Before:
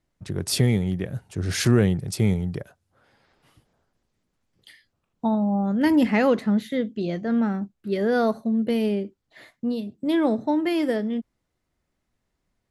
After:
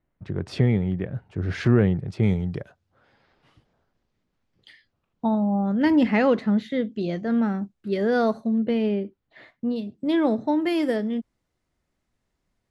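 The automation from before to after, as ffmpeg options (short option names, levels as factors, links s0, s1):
-af "asetnsamples=n=441:p=0,asendcmd='2.23 lowpass f 4800;6.92 lowpass f 7700;8.58 lowpass f 3200;9.76 lowpass f 6200;10.62 lowpass f 11000',lowpass=2200"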